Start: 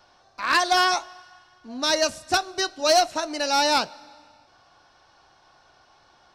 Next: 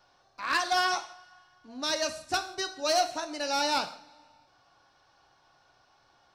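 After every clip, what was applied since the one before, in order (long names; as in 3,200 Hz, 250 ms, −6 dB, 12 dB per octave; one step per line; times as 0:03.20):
reverb whose tail is shaped and stops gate 200 ms falling, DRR 7.5 dB
level −7.5 dB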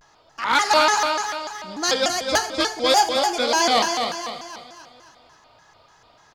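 on a send: repeating echo 261 ms, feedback 46%, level −5.5 dB
on the sum: pitch modulation by a square or saw wave square 3.4 Hz, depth 250 cents
level +8.5 dB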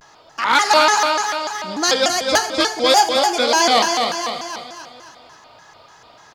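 low-shelf EQ 77 Hz −10.5 dB
in parallel at 0 dB: downward compressor, threshold −29 dBFS, peak gain reduction 15.5 dB
on the sum: level +2 dB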